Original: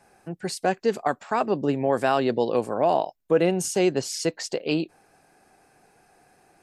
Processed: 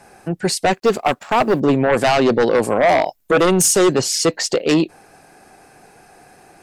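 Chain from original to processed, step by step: 0.72–1.6 G.711 law mismatch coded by A; 2.63–3.97 high shelf 6600 Hz +8.5 dB; sine folder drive 8 dB, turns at -9 dBFS

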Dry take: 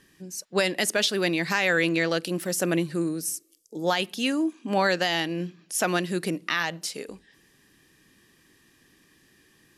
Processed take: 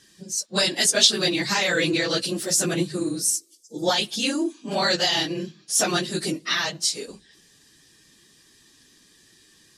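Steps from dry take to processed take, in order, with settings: phase scrambler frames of 50 ms; band shelf 5600 Hz +10 dB

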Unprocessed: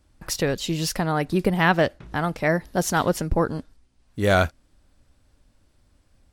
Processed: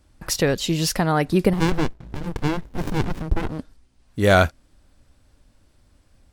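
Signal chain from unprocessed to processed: 1.53–3.59 running maximum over 65 samples; gain +3.5 dB

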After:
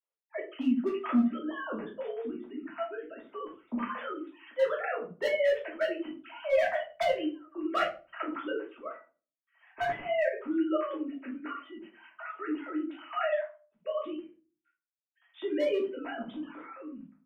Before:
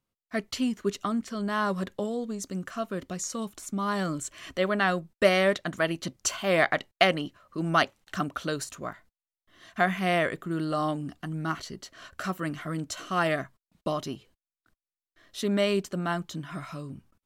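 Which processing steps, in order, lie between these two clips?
sine-wave speech; 8.86–9.87 LPF 2600 Hz 24 dB/oct; overloaded stage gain 18.5 dB; reverb RT60 0.35 s, pre-delay 3 ms, DRR -4.5 dB; gain -9 dB

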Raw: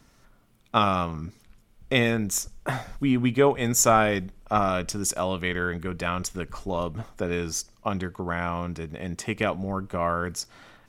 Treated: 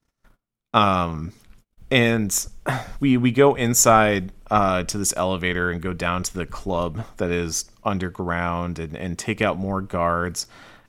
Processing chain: gate -54 dBFS, range -29 dB; gain +4.5 dB

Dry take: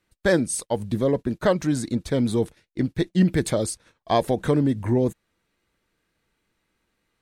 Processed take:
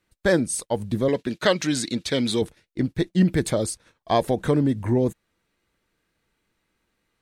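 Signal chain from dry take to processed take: 1.08–2.42 weighting filter D

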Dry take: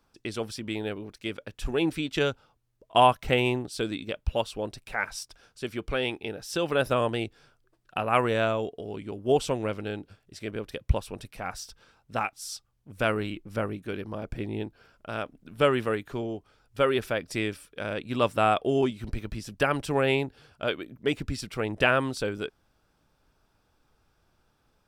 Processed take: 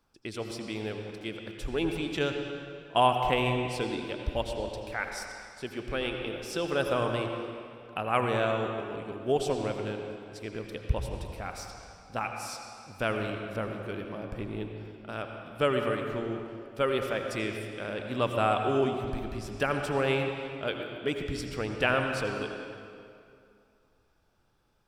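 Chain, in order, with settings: reverb RT60 2.4 s, pre-delay 73 ms, DRR 3.5 dB; gain -4 dB

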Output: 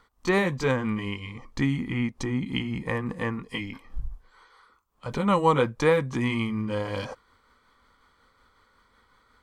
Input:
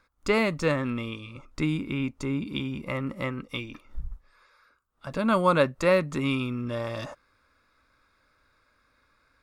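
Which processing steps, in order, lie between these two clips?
delay-line pitch shifter -2 st; in parallel at -1 dB: compressor, threshold -34 dBFS, peak gain reduction 16 dB

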